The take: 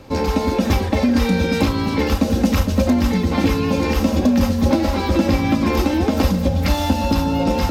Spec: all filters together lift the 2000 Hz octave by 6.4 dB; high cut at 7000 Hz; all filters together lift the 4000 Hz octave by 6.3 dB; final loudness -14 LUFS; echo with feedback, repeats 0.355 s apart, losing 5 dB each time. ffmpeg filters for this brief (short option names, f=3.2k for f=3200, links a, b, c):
-af "lowpass=7k,equalizer=f=2k:t=o:g=6,equalizer=f=4k:t=o:g=6.5,aecho=1:1:355|710|1065|1420|1775|2130|2485:0.562|0.315|0.176|0.0988|0.0553|0.031|0.0173,volume=1.5dB"